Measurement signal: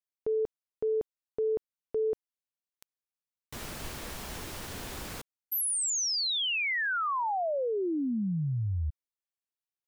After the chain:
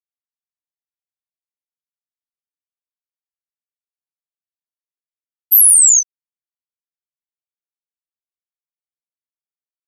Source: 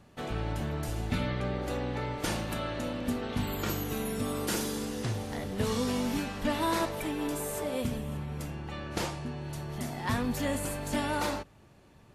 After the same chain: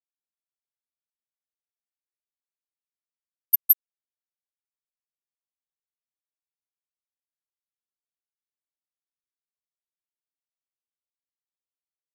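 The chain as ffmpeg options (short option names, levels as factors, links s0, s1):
-af "equalizer=f=1400:t=o:w=0.99:g=-12,aecho=1:1:166:0.316,alimiter=limit=0.0708:level=0:latency=1:release=346,aemphasis=mode=production:type=50kf,aecho=1:1:6:0.79,aexciter=amount=13.1:drive=1.4:freq=5600,afftfilt=real='re*gte(hypot(re,im),5.62)':imag='im*gte(hypot(re,im),5.62)':win_size=1024:overlap=0.75,areverse,acompressor=threshold=0.562:ratio=6:attack=1.1:release=98:knee=1:detection=peak,areverse,volume=0.891"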